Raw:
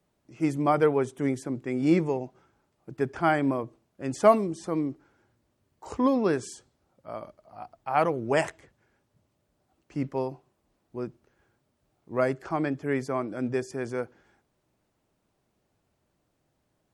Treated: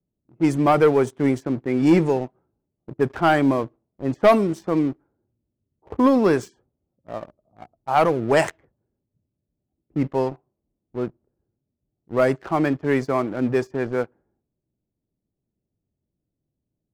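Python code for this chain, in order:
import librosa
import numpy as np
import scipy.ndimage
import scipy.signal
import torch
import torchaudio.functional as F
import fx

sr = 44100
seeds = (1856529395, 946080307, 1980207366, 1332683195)

y = fx.env_lowpass(x, sr, base_hz=310.0, full_db=-22.0)
y = fx.leveller(y, sr, passes=2)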